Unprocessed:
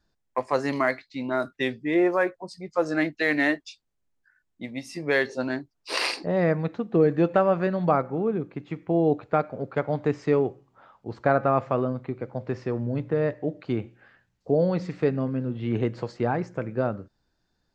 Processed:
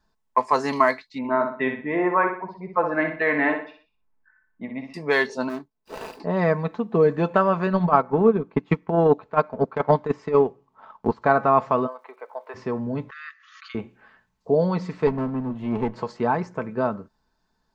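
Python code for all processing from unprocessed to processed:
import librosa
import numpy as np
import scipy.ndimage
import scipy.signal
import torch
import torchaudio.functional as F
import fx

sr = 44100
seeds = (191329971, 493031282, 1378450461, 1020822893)

y = fx.chain(x, sr, fx.lowpass(hz=2400.0, slope=24),
    fx.echo_feedback(ms=61, feedback_pct=39, wet_db=-6.5), at=(1.18, 4.94))
y = fx.chain(y, sr, fx.median_filter(points=41),
    fx.low_shelf(hz=180.0, db=-6.0), at=(5.49, 6.2))
y = fx.chain(y, sr, fx.high_shelf(hz=7600.0, db=-7.5),
    fx.transient(attack_db=11, sustain_db=-7),
    fx.over_compress(threshold_db=-18.0, ratio=-0.5), at=(7.71, 11.22))
y = fx.highpass(y, sr, hz=550.0, slope=24, at=(11.86, 12.54), fade=0.02)
y = fx.air_absorb(y, sr, metres=190.0, at=(11.86, 12.54), fade=0.02)
y = fx.dmg_crackle(y, sr, seeds[0], per_s=280.0, level_db=-62.0, at=(11.86, 12.54), fade=0.02)
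y = fx.chain(y, sr, fx.brickwall_bandpass(low_hz=1100.0, high_hz=7000.0),
    fx.pre_swell(db_per_s=50.0), at=(13.1, 13.75))
y = fx.chain(y, sr, fx.lower_of_two(delay_ms=0.44),
    fx.high_shelf(hz=3200.0, db=-11.5), at=(15.07, 15.96))
y = fx.peak_eq(y, sr, hz=1000.0, db=11.5, octaves=0.45)
y = y + 0.48 * np.pad(y, (int(4.6 * sr / 1000.0), 0))[:len(y)]
y = fx.dynamic_eq(y, sr, hz=5500.0, q=0.81, threshold_db=-40.0, ratio=4.0, max_db=4)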